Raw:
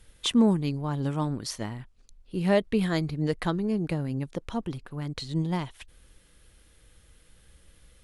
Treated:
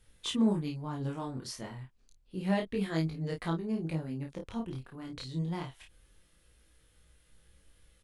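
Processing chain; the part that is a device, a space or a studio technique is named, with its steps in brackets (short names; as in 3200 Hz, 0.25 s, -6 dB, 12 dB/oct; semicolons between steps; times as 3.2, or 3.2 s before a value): double-tracked vocal (doubler 31 ms -4.5 dB; chorus 0.29 Hz, delay 18 ms, depth 5.5 ms); gain -5 dB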